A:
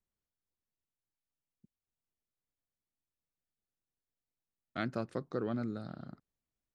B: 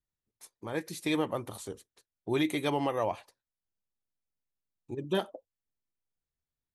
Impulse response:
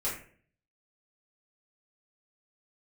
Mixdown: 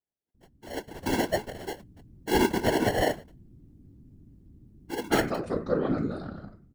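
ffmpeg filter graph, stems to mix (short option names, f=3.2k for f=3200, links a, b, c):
-filter_complex "[0:a]aeval=exprs='val(0)+0.00126*(sin(2*PI*60*n/s)+sin(2*PI*2*60*n/s)/2+sin(2*PI*3*60*n/s)/3+sin(2*PI*4*60*n/s)/4+sin(2*PI*5*60*n/s)/5)':c=same,adelay=350,volume=-1.5dB,asplit=2[a][b];[b]volume=-4.5dB[c];[1:a]highpass=f=240:w=0.5412,highpass=f=240:w=1.3066,acrusher=samples=36:mix=1:aa=0.000001,adynamicequalizer=threshold=0.00447:dfrequency=2700:dqfactor=0.7:tfrequency=2700:tqfactor=0.7:attack=5:release=100:ratio=0.375:range=3:mode=cutabove:tftype=highshelf,volume=0dB[d];[2:a]atrim=start_sample=2205[e];[c][e]afir=irnorm=-1:irlink=0[f];[a][d][f]amix=inputs=3:normalize=0,dynaudnorm=f=220:g=9:m=12dB,afftfilt=real='hypot(re,im)*cos(2*PI*random(0))':imag='hypot(re,im)*sin(2*PI*random(1))':win_size=512:overlap=0.75"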